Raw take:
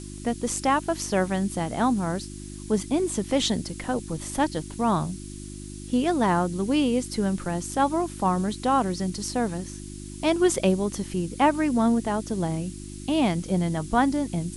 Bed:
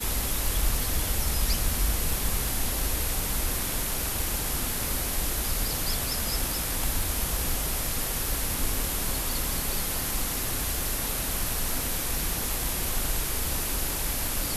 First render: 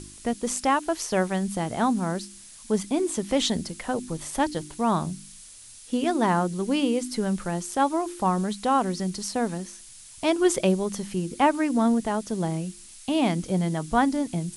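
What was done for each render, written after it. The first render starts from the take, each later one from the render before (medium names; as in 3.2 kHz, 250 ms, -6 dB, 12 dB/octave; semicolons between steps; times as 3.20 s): de-hum 50 Hz, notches 7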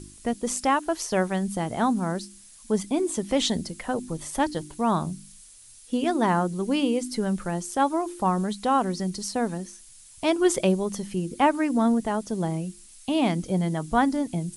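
noise reduction 6 dB, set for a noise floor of -47 dBFS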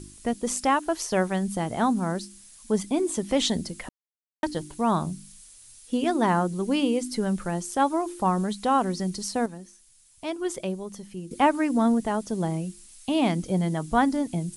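3.89–4.43 s: mute; 9.46–11.31 s: gain -8.5 dB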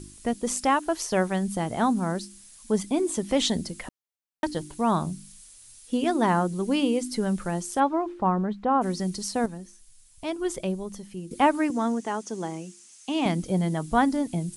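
7.79–8.81 s: low-pass 3 kHz -> 1.3 kHz; 9.44–10.99 s: bass shelf 95 Hz +11.5 dB; 11.70–13.26 s: cabinet simulation 290–8900 Hz, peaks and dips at 600 Hz -7 dB, 4 kHz -4 dB, 6.3 kHz +6 dB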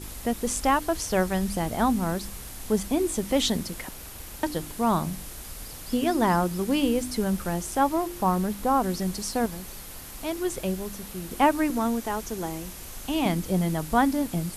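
add bed -12 dB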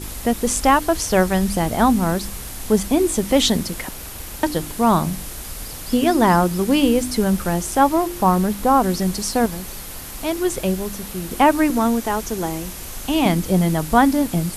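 trim +7.5 dB; peak limiter -3 dBFS, peak gain reduction 2.5 dB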